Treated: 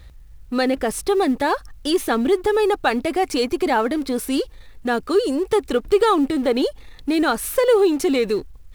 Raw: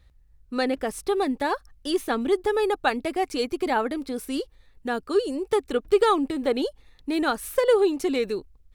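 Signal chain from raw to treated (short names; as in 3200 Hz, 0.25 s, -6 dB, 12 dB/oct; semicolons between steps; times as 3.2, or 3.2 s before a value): G.711 law mismatch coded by mu; in parallel at +1 dB: limiter -19.5 dBFS, peak gain reduction 11 dB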